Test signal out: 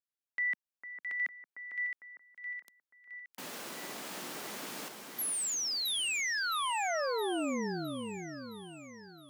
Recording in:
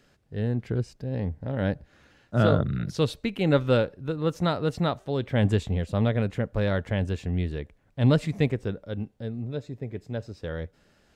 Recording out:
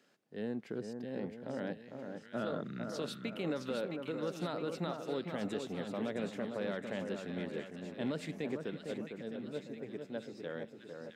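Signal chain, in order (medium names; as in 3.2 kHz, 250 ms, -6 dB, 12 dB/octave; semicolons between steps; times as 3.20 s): high-pass 200 Hz 24 dB/octave; peak limiter -21 dBFS; two-band feedback delay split 1.6 kHz, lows 453 ms, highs 665 ms, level -5.5 dB; trim -7 dB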